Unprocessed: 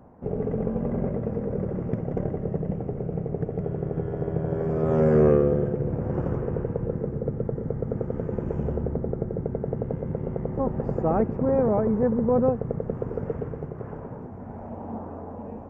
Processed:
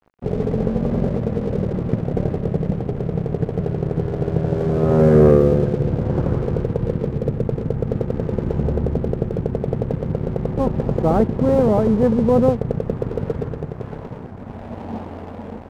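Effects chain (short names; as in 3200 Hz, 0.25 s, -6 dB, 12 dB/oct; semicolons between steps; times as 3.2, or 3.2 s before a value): low shelf 230 Hz +4 dB; crossover distortion -43 dBFS; gain +5.5 dB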